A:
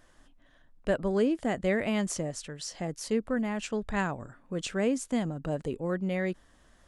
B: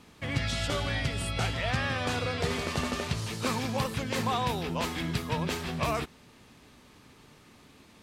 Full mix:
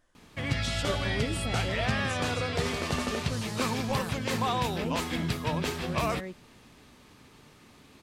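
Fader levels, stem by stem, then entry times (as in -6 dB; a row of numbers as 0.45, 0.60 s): -9.0, +0.5 dB; 0.00, 0.15 s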